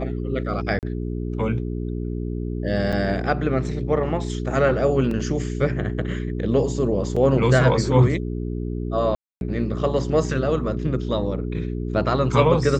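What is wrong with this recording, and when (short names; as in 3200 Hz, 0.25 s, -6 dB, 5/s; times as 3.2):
hum 60 Hz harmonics 7 -27 dBFS
0.79–0.83 gap 38 ms
2.92–2.93 gap 6.7 ms
5.11 gap 2.9 ms
7.16–7.17 gap 5 ms
9.15–9.41 gap 0.261 s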